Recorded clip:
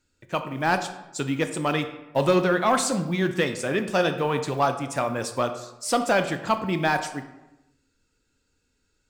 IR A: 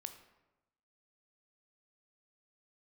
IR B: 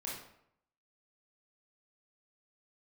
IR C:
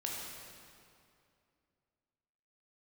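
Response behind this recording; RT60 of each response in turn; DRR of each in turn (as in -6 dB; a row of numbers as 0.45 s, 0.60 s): A; 1.0 s, 0.70 s, 2.5 s; 7.5 dB, -5.0 dB, -3.0 dB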